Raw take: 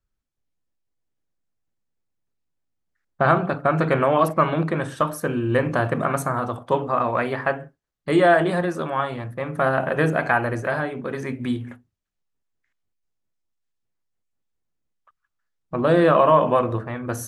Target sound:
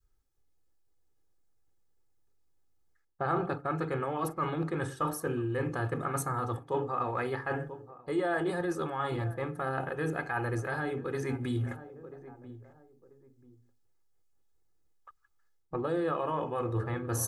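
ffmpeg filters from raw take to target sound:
ffmpeg -i in.wav -filter_complex "[0:a]equalizer=frequency=2600:width=1.1:gain=-6.5,aecho=1:1:2.4:0.6,asplit=2[link_01][link_02];[link_02]adelay=988,lowpass=frequency=920:poles=1,volume=-23dB,asplit=2[link_03][link_04];[link_04]adelay=988,lowpass=frequency=920:poles=1,volume=0.29[link_05];[link_01][link_03][link_05]amix=inputs=3:normalize=0,areverse,acompressor=threshold=-31dB:ratio=6,areverse,adynamicequalizer=threshold=0.00562:dfrequency=610:dqfactor=0.84:tfrequency=610:tqfactor=0.84:attack=5:release=100:ratio=0.375:range=3:mode=cutabove:tftype=bell,volume=3.5dB" out.wav

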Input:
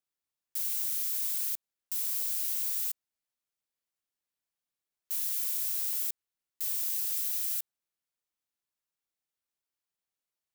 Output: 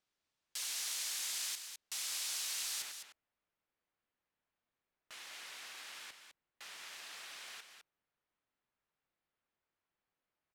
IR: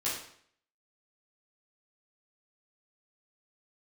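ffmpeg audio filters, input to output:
-af "asetnsamples=nb_out_samples=441:pad=0,asendcmd='2.82 lowpass f 2200',lowpass=5600,aecho=1:1:206:0.398,volume=7dB"

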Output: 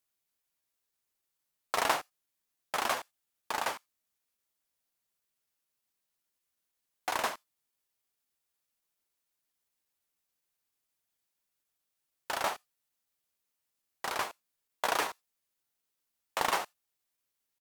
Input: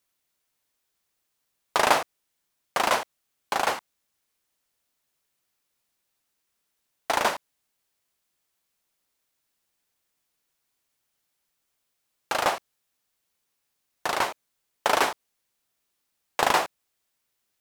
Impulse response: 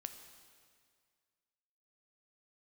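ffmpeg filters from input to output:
-filter_complex "[0:a]asetrate=48091,aresample=44100,atempo=0.917004,asplit=2[link_01][link_02];[link_02]aderivative[link_03];[1:a]atrim=start_sample=2205,afade=type=out:start_time=0.14:duration=0.01,atrim=end_sample=6615[link_04];[link_03][link_04]afir=irnorm=-1:irlink=0,volume=-5.5dB[link_05];[link_01][link_05]amix=inputs=2:normalize=0,volume=-8dB"

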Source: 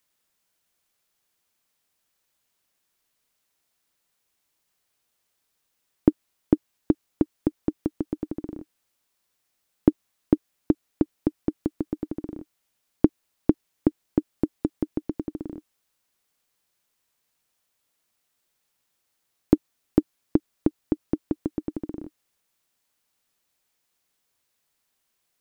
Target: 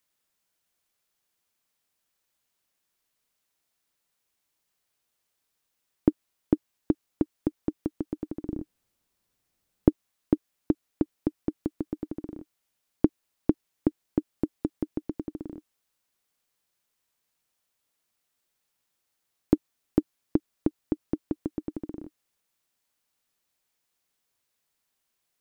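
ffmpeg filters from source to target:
ffmpeg -i in.wav -filter_complex "[0:a]asettb=1/sr,asplit=3[link_01][link_02][link_03];[link_01]atrim=end=8.464[link_04];[link_02]atrim=start=8.46:end=9.88,asetpts=PTS-STARTPTS,afade=type=in:duration=0.004:curve=qsin,afade=type=out:start_time=1.416:duration=0.004:curve=qsin,lowshelf=frequency=370:gain=12[link_05];[link_03]atrim=start=9.876[link_06];[link_04][link_05]acrossfade=duration=0.004:curve1=hsin:curve2=qsin[link_07];[link_07][link_06]acrossfade=duration=0.004:curve1=qsin:curve2=hsin,volume=-3.5dB" out.wav

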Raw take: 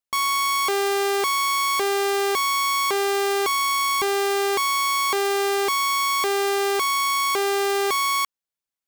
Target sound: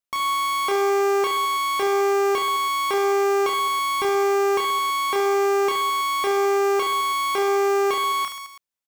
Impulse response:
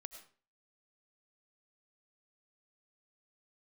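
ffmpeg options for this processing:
-filter_complex "[0:a]aecho=1:1:30|72|130.8|213.1|328.4:0.631|0.398|0.251|0.158|0.1,acrossover=split=3200[link_01][link_02];[link_02]acompressor=threshold=-30dB:ratio=4:attack=1:release=60[link_03];[link_01][link_03]amix=inputs=2:normalize=0,volume=-1.5dB"

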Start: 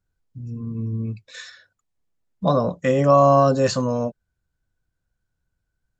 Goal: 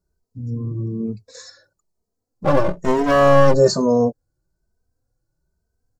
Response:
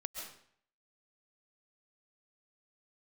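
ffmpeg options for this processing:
-filter_complex "[0:a]firequalizer=gain_entry='entry(200,0);entry(370,6);entry(3000,-26);entry(4300,0)':delay=0.05:min_phase=1,asettb=1/sr,asplit=3[link_01][link_02][link_03];[link_01]atrim=end=2.444[link_04];[link_02]atrim=start=2.44:end=3.54,asetpts=PTS-STARTPTS,afade=type=in:duration=0.004:curve=qsin,afade=type=out:start_time=1.096:duration=0.004:curve=qsin,aeval=exprs='clip(val(0),-1,0.0075)':channel_layout=same[link_05];[link_03]atrim=start=3.536[link_06];[link_04][link_05]acrossfade=duration=0.004:curve1=hsin:curve2=qsin[link_07];[link_07][link_06]acrossfade=duration=0.004:curve1=qsin:curve2=hsin,asplit=2[link_08][link_09];[link_09]adelay=2.9,afreqshift=1.1[link_10];[link_08][link_10]amix=inputs=2:normalize=1,volume=6.5dB"

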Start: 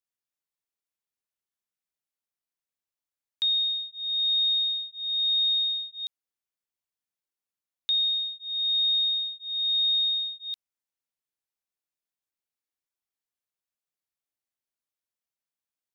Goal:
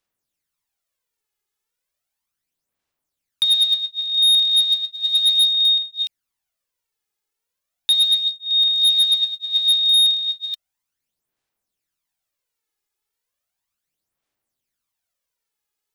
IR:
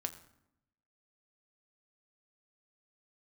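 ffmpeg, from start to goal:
-af "aphaser=in_gain=1:out_gain=1:delay=2.4:decay=0.57:speed=0.35:type=sinusoidal,asoftclip=type=hard:threshold=-20dB,volume=8dB"

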